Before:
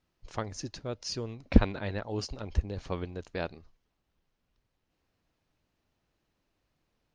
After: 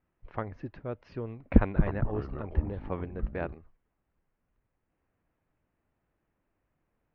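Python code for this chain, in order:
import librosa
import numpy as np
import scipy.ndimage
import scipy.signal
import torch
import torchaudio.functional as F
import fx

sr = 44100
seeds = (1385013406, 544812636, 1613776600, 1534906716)

y = scipy.signal.sosfilt(scipy.signal.butter(4, 2200.0, 'lowpass', fs=sr, output='sos'), x)
y = fx.echo_pitch(y, sr, ms=222, semitones=-6, count=2, db_per_echo=-6.0, at=(1.54, 3.54))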